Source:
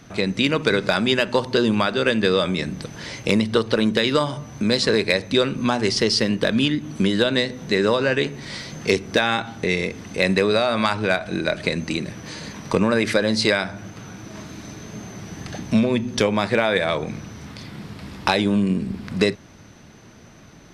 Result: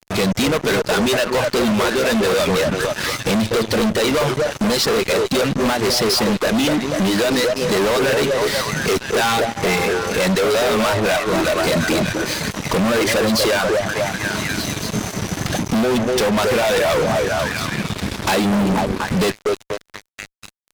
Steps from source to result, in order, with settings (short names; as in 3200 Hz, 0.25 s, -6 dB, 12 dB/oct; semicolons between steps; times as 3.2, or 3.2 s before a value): CVSD 64 kbps; reverb removal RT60 0.78 s; delay with a stepping band-pass 0.243 s, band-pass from 490 Hz, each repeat 0.7 oct, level -4 dB; vocal rider within 4 dB 2 s; fuzz box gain 32 dB, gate -37 dBFS; gain -2 dB